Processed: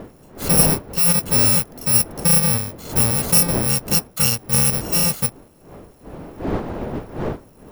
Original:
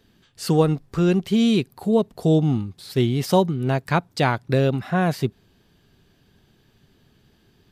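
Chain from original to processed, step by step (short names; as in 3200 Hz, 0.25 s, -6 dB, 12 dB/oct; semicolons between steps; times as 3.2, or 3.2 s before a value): FFT order left unsorted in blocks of 128 samples; wind noise 460 Hz -32 dBFS; gain +2 dB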